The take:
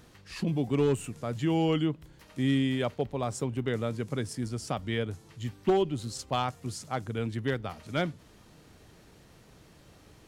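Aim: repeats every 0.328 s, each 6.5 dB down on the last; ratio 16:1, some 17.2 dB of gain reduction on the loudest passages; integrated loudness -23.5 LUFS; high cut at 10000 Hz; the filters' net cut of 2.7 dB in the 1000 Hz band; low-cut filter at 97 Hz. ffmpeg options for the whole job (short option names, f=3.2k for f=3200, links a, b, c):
-af "highpass=97,lowpass=10k,equalizer=f=1k:t=o:g=-4,acompressor=threshold=-38dB:ratio=16,aecho=1:1:328|656|984|1312|1640|1968:0.473|0.222|0.105|0.0491|0.0231|0.0109,volume=19.5dB"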